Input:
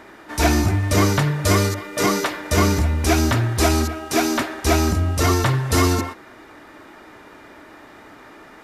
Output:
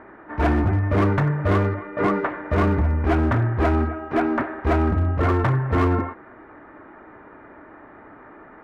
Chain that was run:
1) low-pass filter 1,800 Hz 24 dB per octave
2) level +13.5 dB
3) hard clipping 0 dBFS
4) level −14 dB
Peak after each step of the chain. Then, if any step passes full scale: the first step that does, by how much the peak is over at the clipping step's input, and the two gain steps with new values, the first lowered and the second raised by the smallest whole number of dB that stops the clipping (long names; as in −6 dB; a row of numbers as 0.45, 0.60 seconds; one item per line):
−5.5, +8.0, 0.0, −14.0 dBFS
step 2, 8.0 dB
step 2 +5.5 dB, step 4 −6 dB